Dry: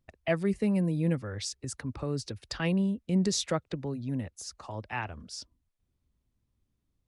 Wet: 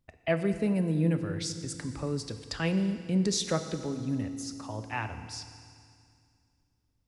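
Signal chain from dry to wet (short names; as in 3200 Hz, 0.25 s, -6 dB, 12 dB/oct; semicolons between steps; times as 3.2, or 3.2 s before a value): FDN reverb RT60 2.2 s, low-frequency decay 1.3×, high-frequency decay 1×, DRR 8 dB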